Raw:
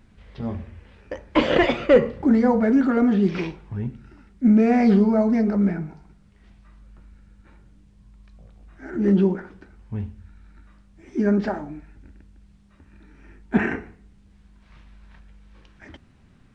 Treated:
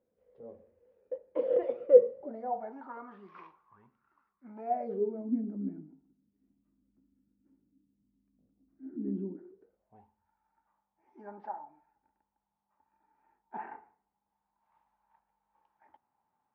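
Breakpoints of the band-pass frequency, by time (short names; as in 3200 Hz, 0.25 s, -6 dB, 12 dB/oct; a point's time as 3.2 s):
band-pass, Q 13
2.07 s 500 Hz
3.08 s 1100 Hz
4.45 s 1100 Hz
5.31 s 270 Hz
9.3 s 270 Hz
10.07 s 870 Hz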